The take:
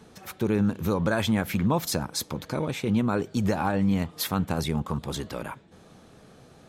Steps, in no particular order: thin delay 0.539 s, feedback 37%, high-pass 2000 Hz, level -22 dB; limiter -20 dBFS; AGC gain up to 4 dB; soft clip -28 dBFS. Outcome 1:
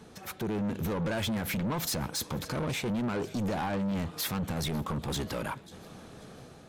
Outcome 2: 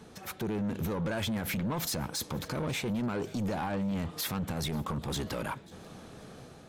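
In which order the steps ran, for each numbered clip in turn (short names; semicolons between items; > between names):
thin delay > limiter > AGC > soft clip; AGC > limiter > soft clip > thin delay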